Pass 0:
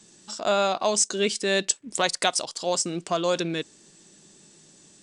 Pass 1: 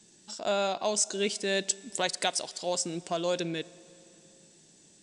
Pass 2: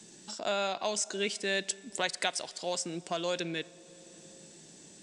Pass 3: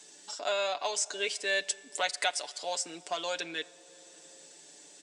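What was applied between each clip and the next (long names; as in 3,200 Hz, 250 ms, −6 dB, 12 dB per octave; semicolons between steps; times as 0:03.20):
parametric band 1,200 Hz −7.5 dB 0.35 octaves; on a send at −20 dB: convolution reverb RT60 3.0 s, pre-delay 28 ms; on the sum: level −5 dB
dynamic equaliser 1,900 Hz, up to +6 dB, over −44 dBFS, Q 0.8; multiband upward and downward compressor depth 40%; level −4.5 dB
high-pass filter 480 Hz 12 dB per octave; comb filter 6.9 ms, depth 63%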